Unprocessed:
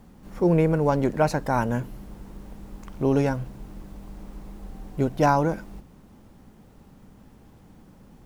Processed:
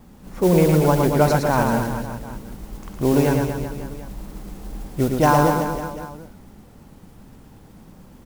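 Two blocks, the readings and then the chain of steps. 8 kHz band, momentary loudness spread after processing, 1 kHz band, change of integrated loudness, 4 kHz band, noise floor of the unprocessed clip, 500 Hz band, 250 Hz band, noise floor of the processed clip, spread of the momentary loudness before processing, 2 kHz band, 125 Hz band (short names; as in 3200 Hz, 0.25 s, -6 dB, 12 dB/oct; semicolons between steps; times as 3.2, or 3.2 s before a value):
+11.5 dB, 21 LU, +5.0 dB, +4.0 dB, +9.5 dB, -52 dBFS, +5.0 dB, +5.0 dB, -47 dBFS, 22 LU, +6.0 dB, +5.5 dB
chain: modulation noise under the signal 19 dB; wow and flutter 67 cents; reverse bouncing-ball echo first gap 0.11 s, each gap 1.15×, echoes 5; gain +3 dB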